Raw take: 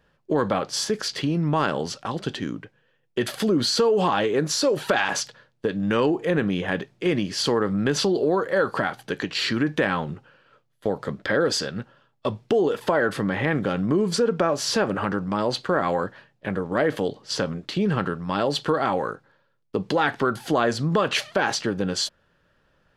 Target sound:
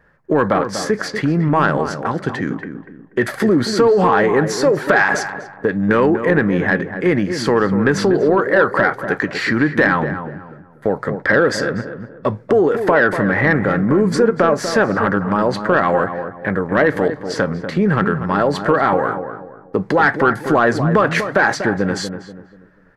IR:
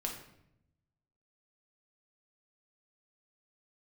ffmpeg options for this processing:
-filter_complex "[0:a]highshelf=f=2400:t=q:w=3:g=-7,acontrast=85,asplit=2[s0][s1];[s1]adelay=242,lowpass=f=1200:p=1,volume=0.398,asplit=2[s2][s3];[s3]adelay=242,lowpass=f=1200:p=1,volume=0.36,asplit=2[s4][s5];[s5]adelay=242,lowpass=f=1200:p=1,volume=0.36,asplit=2[s6][s7];[s7]adelay=242,lowpass=f=1200:p=1,volume=0.36[s8];[s0][s2][s4][s6][s8]amix=inputs=5:normalize=0"

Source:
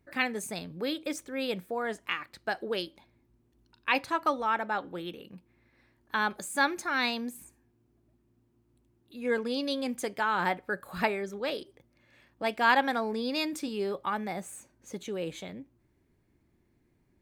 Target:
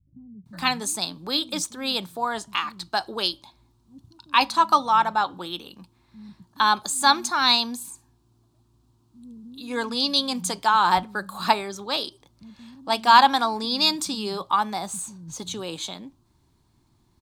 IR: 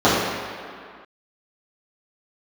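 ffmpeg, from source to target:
-filter_complex "[0:a]equalizer=f=125:t=o:w=1:g=4,equalizer=f=500:t=o:w=1:g=-10,equalizer=f=1000:t=o:w=1:g=11,equalizer=f=2000:t=o:w=1:g=-11,equalizer=f=4000:t=o:w=1:g=11,equalizer=f=8000:t=o:w=1:g=6,acrossover=split=180[s0][s1];[s1]adelay=460[s2];[s0][s2]amix=inputs=2:normalize=0,volume=2"

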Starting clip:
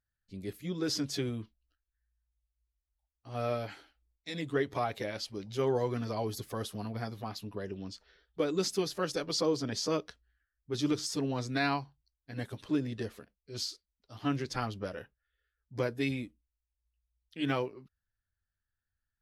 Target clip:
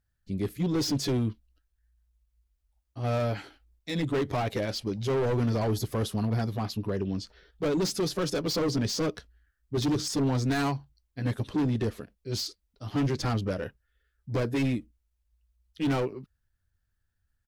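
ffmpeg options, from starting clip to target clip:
-af "volume=44.7,asoftclip=hard,volume=0.0224,atempo=1.1,lowshelf=f=420:g=7.5,volume=1.78"

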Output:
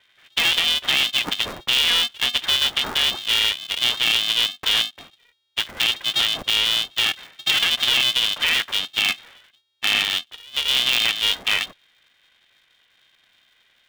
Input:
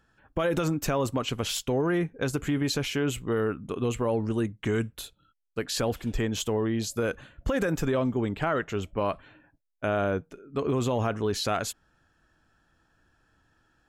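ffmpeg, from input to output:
-filter_complex "[0:a]asettb=1/sr,asplit=3[s0][s1][s2];[s0]atrim=end=10.024[s3];[s1]atrim=start=10.02:end=10.75,asetpts=PTS-STARTPTS,afade=t=in:d=0.004:c=qsin,afade=t=out:st=0.726:d=0.004:c=qsin,asuperstop=centerf=730:order=4:qfactor=1[s4];[s2]atrim=start=10.746[s5];[s3][s4]acrossfade=d=0.004:c1=hsin:c2=qsin[s6];[s6][s5]acrossfade=d=0.004:c1=qsin:c2=hsin,lowpass=f=3000:t=q:w=0.5098,lowpass=f=3000:t=q:w=0.6013,lowpass=f=3000:t=q:w=0.9,lowpass=f=3000:t=q:w=2.563,afreqshift=-3500,aeval=exprs='val(0)*sgn(sin(2*PI*240*n/s))':c=same,volume=2.11"

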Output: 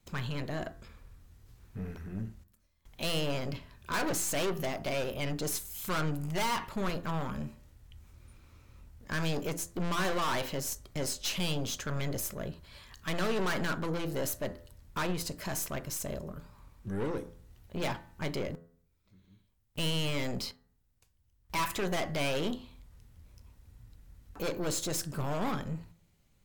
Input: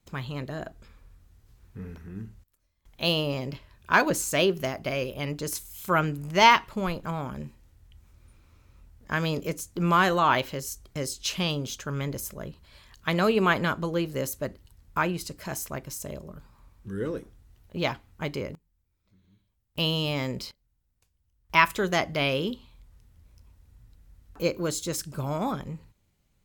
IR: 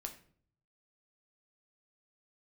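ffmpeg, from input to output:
-filter_complex "[0:a]aeval=exprs='(tanh(39.8*val(0)+0.35)-tanh(0.35))/39.8':c=same,bandreject=f=84.84:t=h:w=4,bandreject=f=169.68:t=h:w=4,bandreject=f=254.52:t=h:w=4,bandreject=f=339.36:t=h:w=4,bandreject=f=424.2:t=h:w=4,bandreject=f=509.04:t=h:w=4,bandreject=f=593.88:t=h:w=4,bandreject=f=678.72:t=h:w=4,bandreject=f=763.56:t=h:w=4,bandreject=f=848.4:t=h:w=4,bandreject=f=933.24:t=h:w=4,bandreject=f=1018.08:t=h:w=4,bandreject=f=1102.92:t=h:w=4,bandreject=f=1187.76:t=h:w=4,bandreject=f=1272.6:t=h:w=4,bandreject=f=1357.44:t=h:w=4,bandreject=f=1442.28:t=h:w=4,bandreject=f=1527.12:t=h:w=4,bandreject=f=1611.96:t=h:w=4,bandreject=f=1696.8:t=h:w=4,bandreject=f=1781.64:t=h:w=4,bandreject=f=1866.48:t=h:w=4,bandreject=f=1951.32:t=h:w=4,asplit=2[s0][s1];[1:a]atrim=start_sample=2205,asetrate=70560,aresample=44100[s2];[s1][s2]afir=irnorm=-1:irlink=0,volume=0.596[s3];[s0][s3]amix=inputs=2:normalize=0,volume=1.12"

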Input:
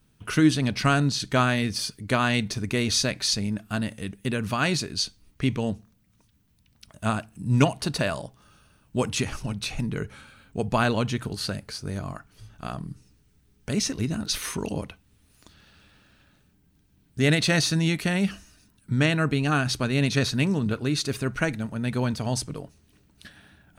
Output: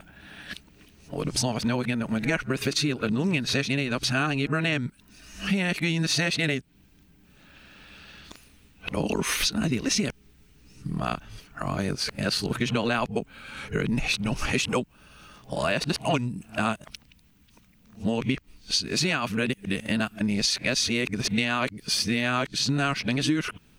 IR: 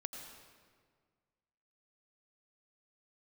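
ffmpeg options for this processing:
-af "areverse,equalizer=f=100:t=o:w=0.67:g=-9,equalizer=f=2500:t=o:w=0.67:g=5,equalizer=f=10000:t=o:w=0.67:g=-4,acompressor=threshold=0.0355:ratio=10,volume=2.37"

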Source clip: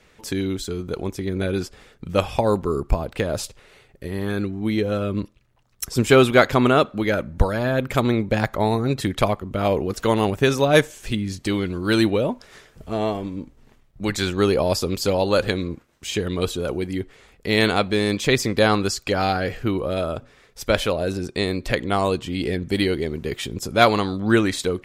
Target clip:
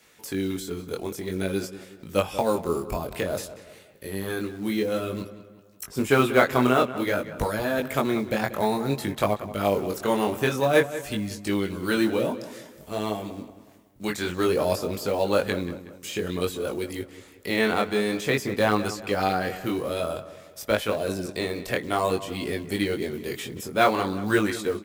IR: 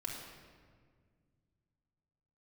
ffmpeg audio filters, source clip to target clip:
-filter_complex "[0:a]highpass=f=180:p=1,aemphasis=mode=production:type=50fm,acrossover=split=500|2500[s0][s1][s2];[s2]acompressor=threshold=0.0178:ratio=6[s3];[s0][s1][s3]amix=inputs=3:normalize=0,acrusher=bits=6:mode=log:mix=0:aa=0.000001,flanger=delay=19:depth=4.8:speed=0.53,asplit=2[s4][s5];[s5]adelay=185,lowpass=f=3400:p=1,volume=0.211,asplit=2[s6][s7];[s7]adelay=185,lowpass=f=3400:p=1,volume=0.45,asplit=2[s8][s9];[s9]adelay=185,lowpass=f=3400:p=1,volume=0.45,asplit=2[s10][s11];[s11]adelay=185,lowpass=f=3400:p=1,volume=0.45[s12];[s4][s6][s8][s10][s12]amix=inputs=5:normalize=0"

